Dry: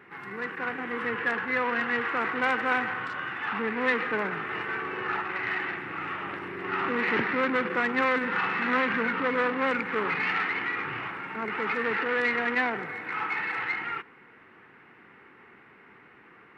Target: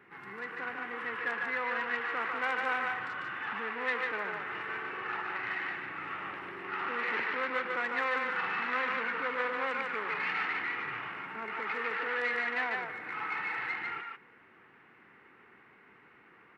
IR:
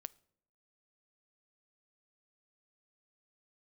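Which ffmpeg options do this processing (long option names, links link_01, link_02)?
-filter_complex "[0:a]acrossover=split=460[link_01][link_02];[link_01]acompressor=threshold=-43dB:ratio=6[link_03];[link_02]aecho=1:1:147:0.708[link_04];[link_03][link_04]amix=inputs=2:normalize=0,volume=-6.5dB"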